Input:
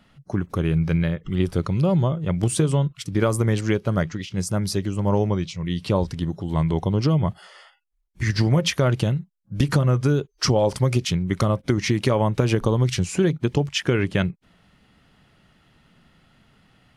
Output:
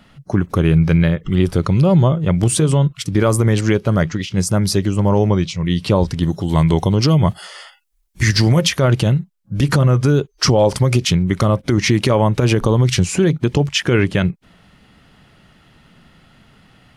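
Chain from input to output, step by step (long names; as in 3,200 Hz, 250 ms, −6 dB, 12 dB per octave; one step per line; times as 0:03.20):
0:06.23–0:08.69: high-shelf EQ 3,600 Hz +9.5 dB
brickwall limiter −13 dBFS, peak gain reduction 7.5 dB
level +8 dB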